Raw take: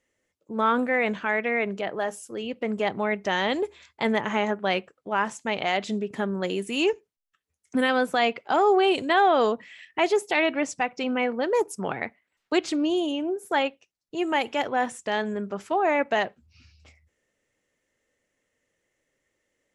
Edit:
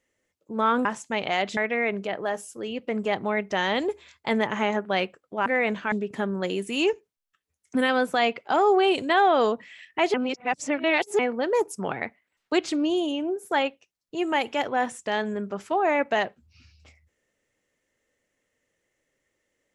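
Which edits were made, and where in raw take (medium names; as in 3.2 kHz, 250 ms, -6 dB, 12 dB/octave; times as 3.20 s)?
0.85–1.31 s: swap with 5.20–5.92 s
10.14–11.19 s: reverse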